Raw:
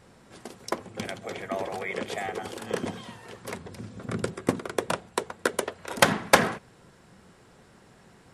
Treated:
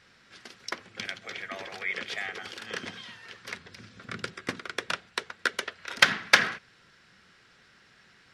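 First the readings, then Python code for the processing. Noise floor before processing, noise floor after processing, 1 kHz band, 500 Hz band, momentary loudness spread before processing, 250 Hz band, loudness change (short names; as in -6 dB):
-56 dBFS, -60 dBFS, -5.5 dB, -11.0 dB, 19 LU, -11.0 dB, -0.5 dB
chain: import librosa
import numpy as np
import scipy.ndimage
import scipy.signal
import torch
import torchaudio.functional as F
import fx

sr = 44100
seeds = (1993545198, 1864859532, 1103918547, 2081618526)

y = fx.band_shelf(x, sr, hz=2800.0, db=14.5, octaves=2.5)
y = F.gain(torch.from_numpy(y), -11.0).numpy()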